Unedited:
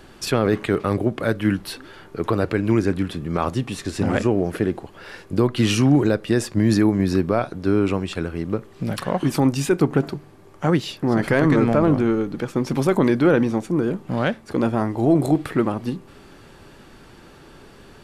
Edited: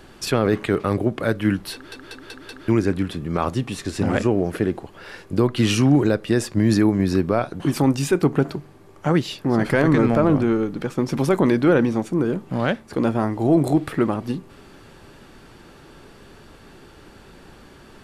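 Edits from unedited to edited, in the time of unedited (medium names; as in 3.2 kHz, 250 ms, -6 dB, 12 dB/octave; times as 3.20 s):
1.73 s: stutter in place 0.19 s, 5 plays
7.60–9.18 s: delete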